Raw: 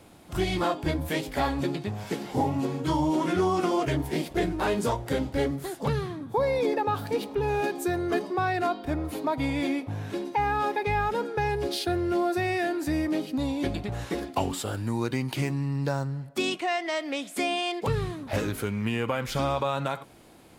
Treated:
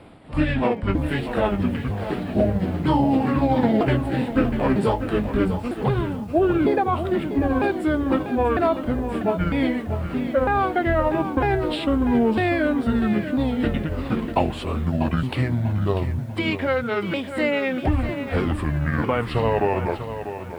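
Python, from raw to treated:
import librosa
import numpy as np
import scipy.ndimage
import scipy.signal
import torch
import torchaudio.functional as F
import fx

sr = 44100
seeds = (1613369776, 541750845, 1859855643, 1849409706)

y = fx.pitch_ramps(x, sr, semitones=-8.5, every_ms=952)
y = np.convolve(y, np.full(7, 1.0 / 7))[:len(y)]
y = fx.echo_crushed(y, sr, ms=644, feedback_pct=35, bits=9, wet_db=-10.0)
y = F.gain(torch.from_numpy(y), 7.0).numpy()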